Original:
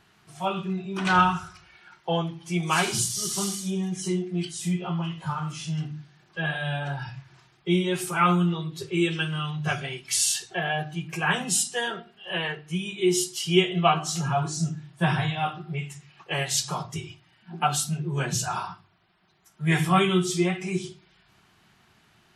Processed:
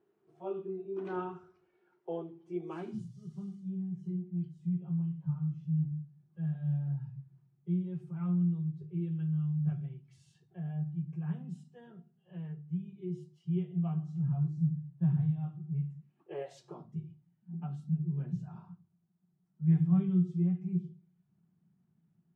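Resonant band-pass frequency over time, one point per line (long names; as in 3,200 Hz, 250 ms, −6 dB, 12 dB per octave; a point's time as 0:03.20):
resonant band-pass, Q 5.1
0:02.68 390 Hz
0:03.13 150 Hz
0:15.95 150 Hz
0:16.52 610 Hz
0:16.99 170 Hz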